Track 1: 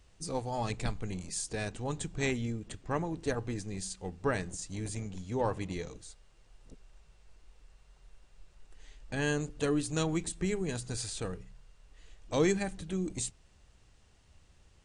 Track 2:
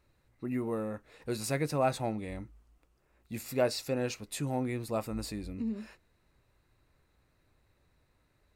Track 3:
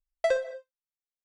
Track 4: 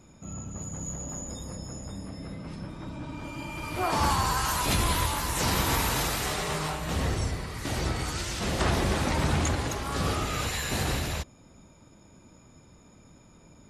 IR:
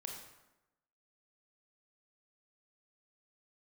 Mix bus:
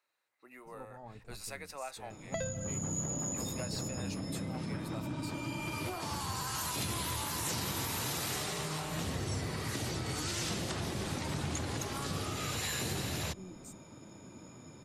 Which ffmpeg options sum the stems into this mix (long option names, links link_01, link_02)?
-filter_complex "[0:a]afwtdn=0.01,adelay=450,volume=-15.5dB[link_01];[1:a]highpass=810,volume=-5.5dB[link_02];[2:a]lowpass=2600,adelay=2100,volume=1.5dB[link_03];[3:a]highpass=frequency=92:width=0.5412,highpass=frequency=92:width=1.3066,equalizer=frequency=340:width_type=o:width=0.77:gain=3,acompressor=threshold=-33dB:ratio=6,adelay=2100,volume=2.5dB[link_04];[link_01][link_02][link_03][link_04]amix=inputs=4:normalize=0,acrossover=split=170|3000[link_05][link_06][link_07];[link_06]acompressor=threshold=-38dB:ratio=6[link_08];[link_05][link_08][link_07]amix=inputs=3:normalize=0"